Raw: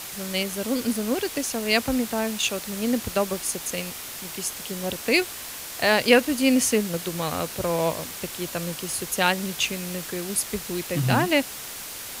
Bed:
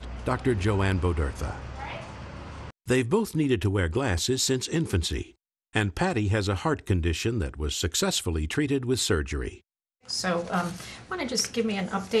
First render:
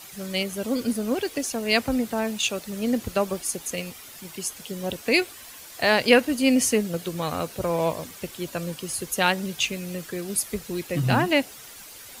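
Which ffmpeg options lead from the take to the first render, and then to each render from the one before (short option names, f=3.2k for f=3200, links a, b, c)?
-af "afftdn=nr=10:nf=-37"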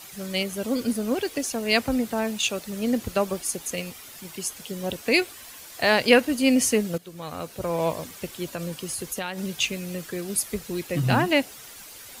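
-filter_complex "[0:a]asettb=1/sr,asplit=3[a][b][c];[a]atrim=end=8.504[d];[b]atrim=start=8.5:end=9.39,asetpts=PTS-STARTPTS,afade=t=in:d=0.004:c=qsin,afade=t=out:st=0.886:d=0.004:c=qsin,acompressor=threshold=-26dB:ratio=6:attack=3.2:release=140:knee=1:detection=peak[e];[c]atrim=start=9.386[f];[d][e]acrossfade=d=0.004:c1=hsin:c2=qsin[g];[g][f]acrossfade=d=0.004:c1=qsin:c2=hsin,asplit=2[h][i];[h]atrim=end=6.98,asetpts=PTS-STARTPTS,afade=t=out:st=6.976:d=0.004:c=hsin:silence=0.177828[j];[i]atrim=start=6.98,asetpts=PTS-STARTPTS,afade=t=in:d=0.96:silence=0.177828[k];[j][k]concat=n=2:v=0:a=1"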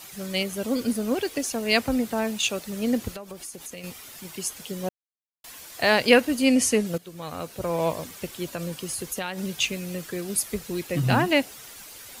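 -filter_complex "[0:a]asettb=1/sr,asplit=3[a][b][c];[a]atrim=end=3.154[d];[b]atrim=start=3.15:end=3.84,asetpts=PTS-STARTPTS,afade=t=in:d=0.004:c=qsin,afade=t=out:st=0.686:d=0.004:c=qsin,acompressor=threshold=-35dB:ratio=6:attack=3.2:release=140:knee=1:detection=peak[e];[c]atrim=start=3.836[f];[d][e]acrossfade=d=0.004:c1=hsin:c2=qsin[g];[g][f]acrossfade=d=0.004:c1=qsin:c2=hsin,asettb=1/sr,asplit=3[h][i][j];[h]atrim=end=6.454[k];[i]atrim=start=6.45:end=6.86,asetpts=PTS-STARTPTS,afade=t=in:d=0.004:c=qsin,afade=t=out:st=0.406:d=0.004:c=qsin,lowpass=f=12k:w=0.5412,lowpass=f=12k:w=1.3066[l];[j]atrim=start=6.856[m];[k][l]acrossfade=d=0.004:c1=hsin:c2=qsin[n];[n][m]acrossfade=d=0.004:c1=qsin:c2=hsin,asplit=3[o][p][q];[o]atrim=end=4.89,asetpts=PTS-STARTPTS,afade=t=out:st=4.886:d=0.004:c=hsin[r];[p]atrim=start=4.89:end=5.44,asetpts=PTS-STARTPTS,volume=0[s];[q]atrim=start=5.44,asetpts=PTS-STARTPTS,afade=t=in:d=0.004:c=hsin[t];[r][s][t]concat=n=3:v=0:a=1"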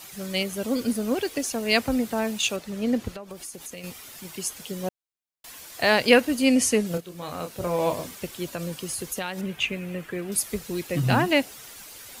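-filter_complex "[0:a]asettb=1/sr,asplit=3[a][b][c];[a]atrim=end=2.564[d];[b]atrim=start=2.56:end=3.31,asetpts=PTS-STARTPTS,afade=t=in:d=0.004:c=qsin,afade=t=out:st=0.746:d=0.004:c=qsin,lowpass=f=4k:p=1[e];[c]atrim=start=3.306[f];[d][e]acrossfade=d=0.004:c1=hsin:c2=qsin[g];[g][f]acrossfade=d=0.004:c1=qsin:c2=hsin,asettb=1/sr,asplit=3[h][i][j];[h]atrim=end=6.884[k];[i]atrim=start=6.88:end=8.15,asetpts=PTS-STARTPTS,afade=t=in:d=0.004:c=qsin,afade=t=out:st=1.266:d=0.004:c=qsin,asplit=2[l][m];[m]adelay=28,volume=-6dB[n];[l][n]amix=inputs=2:normalize=0,atrim=end_sample=56007[o];[j]atrim=start=8.146[p];[k][o]acrossfade=d=0.004:c1=hsin:c2=qsin[q];[q][p]acrossfade=d=0.004:c1=qsin:c2=hsin,asettb=1/sr,asplit=3[r][s][t];[r]atrim=end=9.414[u];[s]atrim=start=9.41:end=10.32,asetpts=PTS-STARTPTS,afade=t=in:d=0.004:c=qsin,afade=t=out:st=0.906:d=0.004:c=qsin,highshelf=f=3.4k:t=q:w=1.5:g=-10[v];[t]atrim=start=10.316[w];[u][v]acrossfade=d=0.004:c1=hsin:c2=qsin[x];[x][w]acrossfade=d=0.004:c1=qsin:c2=hsin"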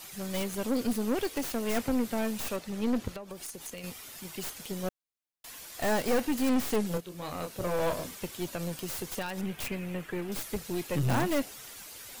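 -filter_complex "[0:a]aeval=exprs='(tanh(14.1*val(0)+0.55)-tanh(0.55))/14.1':c=same,acrossover=split=1800[a][b];[b]aeval=exprs='(mod(39.8*val(0)+1,2)-1)/39.8':c=same[c];[a][c]amix=inputs=2:normalize=0"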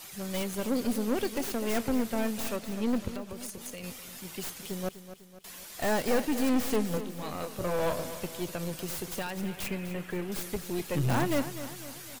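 -af "aecho=1:1:250|500|750|1000|1250:0.237|0.123|0.0641|0.0333|0.0173"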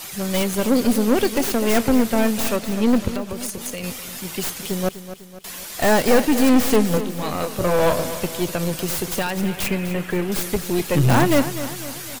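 -af "volume=11.5dB"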